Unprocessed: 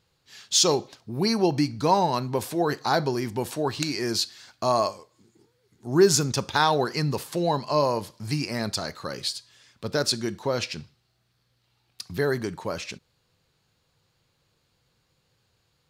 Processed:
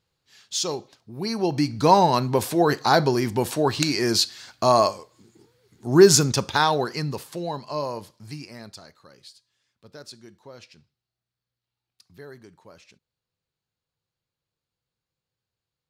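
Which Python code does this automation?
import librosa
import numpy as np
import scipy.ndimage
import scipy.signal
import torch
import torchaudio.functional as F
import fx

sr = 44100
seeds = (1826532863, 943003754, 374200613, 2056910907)

y = fx.gain(x, sr, db=fx.line((1.15, -6.5), (1.87, 5.0), (6.14, 5.0), (7.51, -6.0), (8.04, -6.0), (9.09, -18.0)))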